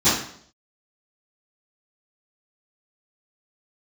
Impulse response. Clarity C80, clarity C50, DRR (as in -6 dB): 7.5 dB, 2.5 dB, -20.0 dB